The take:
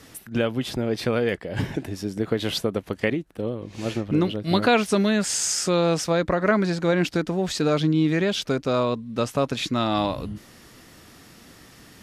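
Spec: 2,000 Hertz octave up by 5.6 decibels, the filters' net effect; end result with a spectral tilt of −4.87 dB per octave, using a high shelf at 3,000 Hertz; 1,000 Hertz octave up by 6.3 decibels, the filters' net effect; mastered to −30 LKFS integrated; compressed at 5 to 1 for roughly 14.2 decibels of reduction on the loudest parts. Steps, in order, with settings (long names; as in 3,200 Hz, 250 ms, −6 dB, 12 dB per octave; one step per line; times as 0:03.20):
parametric band 1,000 Hz +7.5 dB
parametric band 2,000 Hz +7.5 dB
high-shelf EQ 3,000 Hz −8.5 dB
downward compressor 5 to 1, threshold −27 dBFS
level +1 dB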